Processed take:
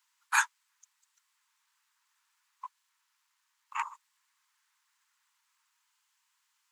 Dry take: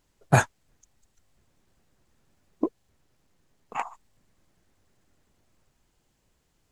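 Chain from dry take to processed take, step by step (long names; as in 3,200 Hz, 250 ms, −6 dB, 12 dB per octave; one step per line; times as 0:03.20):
Butterworth high-pass 900 Hz 96 dB per octave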